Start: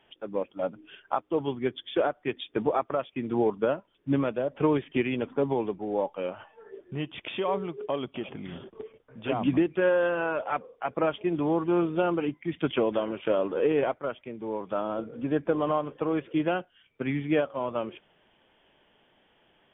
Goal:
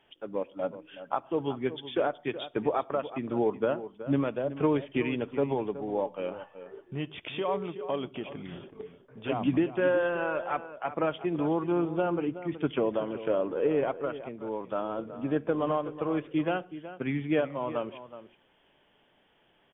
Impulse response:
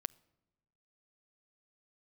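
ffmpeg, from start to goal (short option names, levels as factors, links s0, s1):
-filter_complex "[0:a]asettb=1/sr,asplit=3[s0][s1][s2];[s0]atrim=end=11.724[s3];[s1]atrim=start=11.72:end=13.88,asetpts=PTS-STARTPTS,afade=t=in:d=0.004:c=qsin,afade=t=out:st=2.156:d=0.004:c=qsin,highshelf=f=2800:g=-9[s4];[s2]atrim=start=13.876[s5];[s3][s4]acrossfade=d=0.004:c1=hsin:c2=qsin[s6];[s6][s5]acrossfade=d=0.004:c1=qsin:c2=hsin,asplit=2[s7][s8];[s8]adelay=373.2,volume=0.224,highshelf=f=4000:g=-8.4[s9];[s7][s9]amix=inputs=2:normalize=0[s10];[1:a]atrim=start_sample=2205,afade=t=out:st=0.21:d=0.01,atrim=end_sample=9702[s11];[s10][s11]afir=irnorm=-1:irlink=0"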